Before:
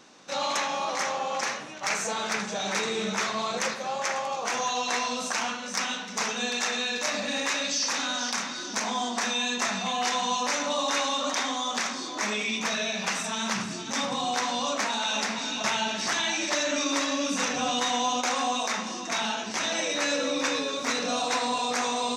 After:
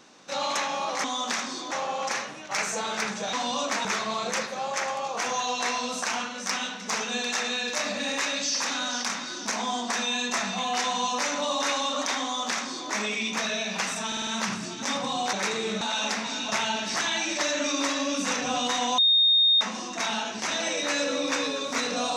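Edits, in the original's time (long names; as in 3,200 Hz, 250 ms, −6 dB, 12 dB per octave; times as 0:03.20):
0:02.65–0:03.13: swap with 0:14.41–0:14.93
0:11.51–0:12.19: duplicate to 0:01.04
0:13.35: stutter 0.05 s, 5 plays
0:18.10–0:18.73: beep over 3,690 Hz −16.5 dBFS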